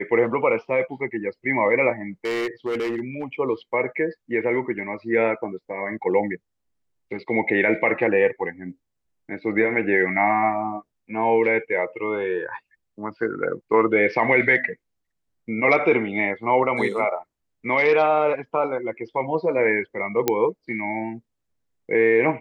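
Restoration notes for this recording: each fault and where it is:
0:02.25–0:03.24: clipping −21.5 dBFS
0:20.28: click −4 dBFS

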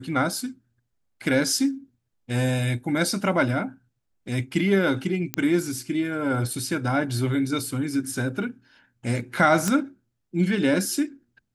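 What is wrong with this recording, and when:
0:05.34: click −8 dBFS
0:09.68: click −10 dBFS

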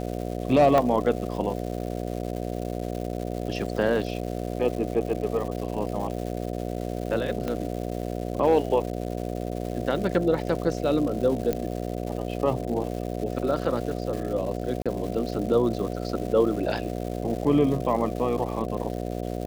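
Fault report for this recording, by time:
mains buzz 60 Hz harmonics 12 −31 dBFS
surface crackle 350 per second −34 dBFS
0:00.78: drop-out 2.1 ms
0:07.48: click −16 dBFS
0:11.53: click −13 dBFS
0:14.82–0:14.86: drop-out 36 ms

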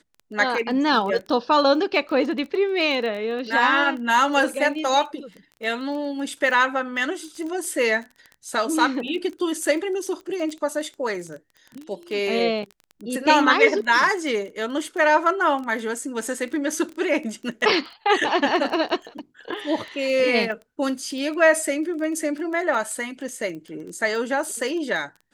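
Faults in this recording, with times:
surface crackle 15 per second −30 dBFS

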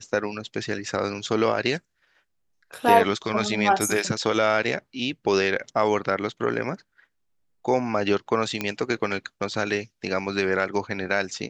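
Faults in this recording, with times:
0:08.61: click −11 dBFS

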